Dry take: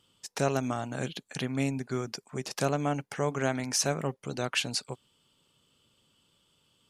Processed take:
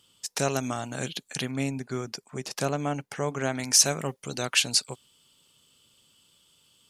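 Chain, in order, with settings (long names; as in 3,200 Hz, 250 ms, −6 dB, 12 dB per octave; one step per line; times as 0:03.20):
high-shelf EQ 2,900 Hz +9.5 dB, from 0:01.51 +2.5 dB, from 0:03.59 +11.5 dB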